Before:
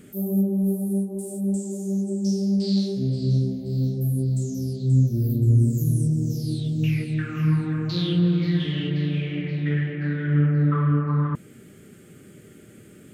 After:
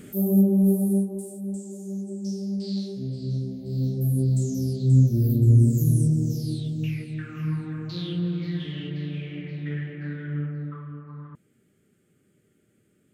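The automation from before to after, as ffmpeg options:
-af "volume=12dB,afade=t=out:st=0.84:d=0.51:silence=0.298538,afade=t=in:st=3.45:d=0.8:silence=0.375837,afade=t=out:st=6:d=0.98:silence=0.375837,afade=t=out:st=10.11:d=0.74:silence=0.281838"

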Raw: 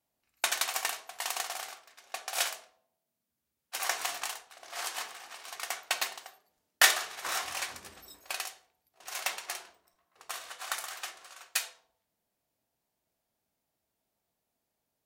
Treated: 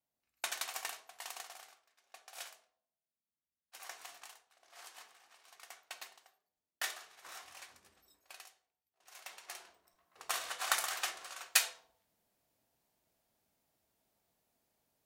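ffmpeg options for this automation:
-af "volume=11dB,afade=t=out:st=0.95:d=0.81:silence=0.398107,afade=t=in:st=9.28:d=0.28:silence=0.375837,afade=t=in:st=9.56:d=0.77:silence=0.266073"

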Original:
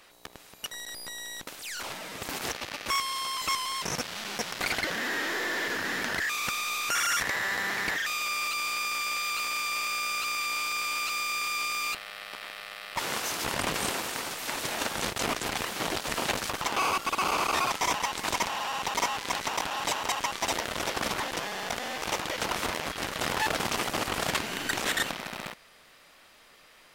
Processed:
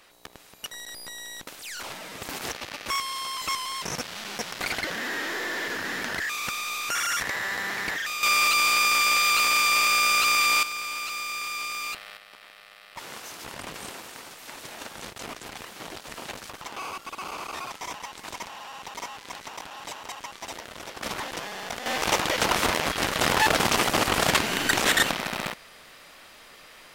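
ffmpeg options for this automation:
-af "asetnsamples=n=441:p=0,asendcmd='8.23 volume volume 9.5dB;10.63 volume volume -1.5dB;12.17 volume volume -8.5dB;21.03 volume volume -1.5dB;21.86 volume volume 7dB',volume=0dB"

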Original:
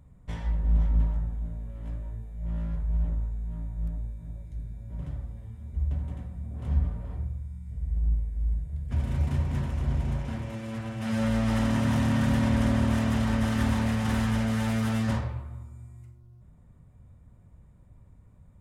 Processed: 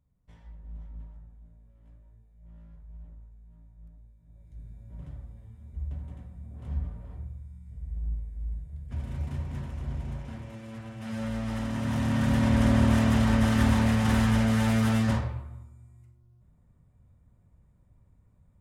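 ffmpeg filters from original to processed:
-af "volume=3dB,afade=t=in:st=4.25:d=0.44:silence=0.237137,afade=t=in:st=11.72:d=1.1:silence=0.334965,afade=t=out:st=14.92:d=0.84:silence=0.316228"

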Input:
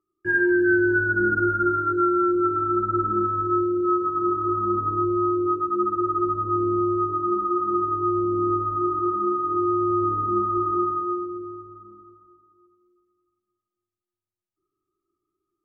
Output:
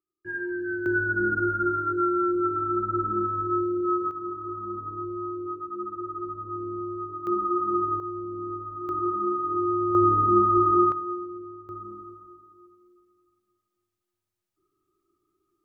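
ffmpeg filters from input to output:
-af "asetnsamples=n=441:p=0,asendcmd='0.86 volume volume -3.5dB;4.11 volume volume -10.5dB;7.27 volume volume -2dB;8 volume volume -11dB;8.89 volume volume -3dB;9.95 volume volume 3.5dB;10.92 volume volume -5dB;11.69 volume volume 6dB',volume=-11.5dB"

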